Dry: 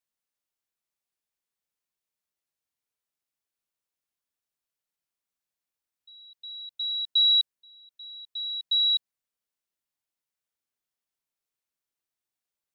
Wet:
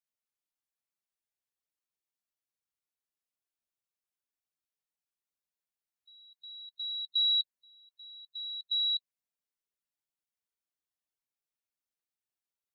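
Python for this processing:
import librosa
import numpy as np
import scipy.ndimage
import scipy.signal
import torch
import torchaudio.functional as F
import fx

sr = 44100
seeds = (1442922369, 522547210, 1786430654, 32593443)

y = fx.spec_quant(x, sr, step_db=15)
y = y * librosa.db_to_amplitude(-6.5)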